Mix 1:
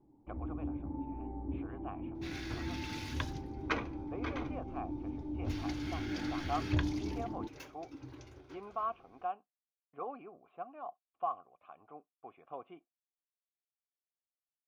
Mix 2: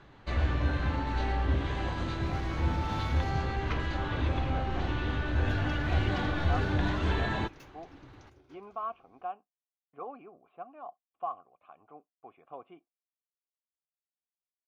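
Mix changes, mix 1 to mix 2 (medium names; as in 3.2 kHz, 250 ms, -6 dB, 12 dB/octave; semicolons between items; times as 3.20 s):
first sound: remove cascade formant filter u; second sound -5.5 dB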